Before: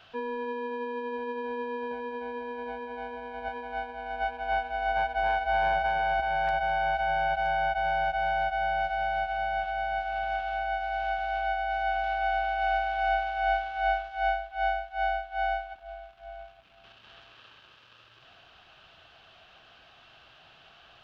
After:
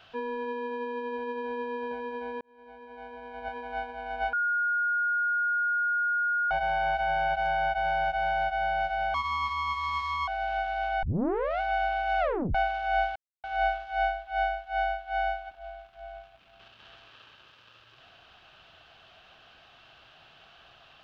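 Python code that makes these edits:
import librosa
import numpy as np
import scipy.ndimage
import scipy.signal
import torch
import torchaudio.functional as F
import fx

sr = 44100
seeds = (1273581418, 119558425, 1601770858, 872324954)

y = fx.edit(x, sr, fx.fade_in_span(start_s=2.41, length_s=1.28),
    fx.bleep(start_s=4.33, length_s=2.18, hz=1430.0, db=-24.0),
    fx.speed_span(start_s=9.14, length_s=1.66, speed=1.46),
    fx.tape_start(start_s=11.55, length_s=0.58),
    fx.tape_stop(start_s=12.72, length_s=0.35),
    fx.insert_silence(at_s=13.68, length_s=0.28), tone=tone)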